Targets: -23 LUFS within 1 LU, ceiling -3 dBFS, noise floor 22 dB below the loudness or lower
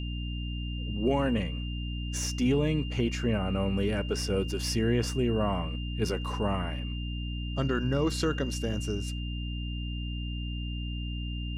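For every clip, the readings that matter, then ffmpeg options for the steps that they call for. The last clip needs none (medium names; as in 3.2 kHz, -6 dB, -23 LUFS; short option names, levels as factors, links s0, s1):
hum 60 Hz; highest harmonic 300 Hz; hum level -31 dBFS; steady tone 2.8 kHz; tone level -42 dBFS; loudness -31.0 LUFS; peak level -15.0 dBFS; loudness target -23.0 LUFS
-> -af "bandreject=f=60:t=h:w=6,bandreject=f=120:t=h:w=6,bandreject=f=180:t=h:w=6,bandreject=f=240:t=h:w=6,bandreject=f=300:t=h:w=6"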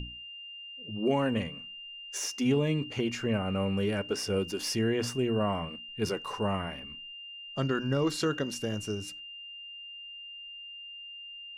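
hum not found; steady tone 2.8 kHz; tone level -42 dBFS
-> -af "bandreject=f=2800:w=30"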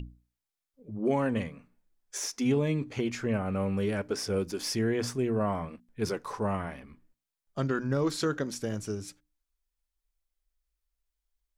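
steady tone not found; loudness -31.0 LUFS; peak level -16.0 dBFS; loudness target -23.0 LUFS
-> -af "volume=2.51"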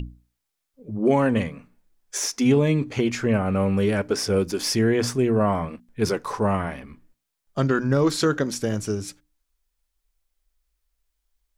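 loudness -23.0 LUFS; peak level -8.0 dBFS; noise floor -81 dBFS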